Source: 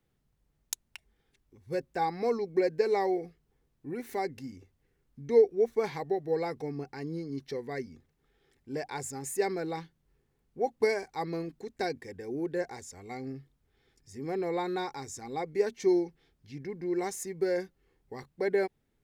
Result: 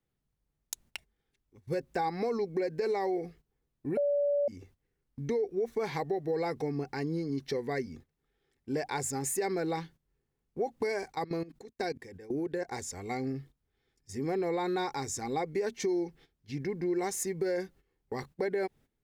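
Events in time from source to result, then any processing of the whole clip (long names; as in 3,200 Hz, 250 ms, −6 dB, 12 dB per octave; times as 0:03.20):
0:03.97–0:04.48: beep over 575 Hz −18.5 dBFS
0:11.12–0:12.72: output level in coarse steps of 18 dB
whole clip: noise gate −55 dBFS, range −14 dB; brickwall limiter −24 dBFS; downward compressor 2.5 to 1, threshold −37 dBFS; level +6.5 dB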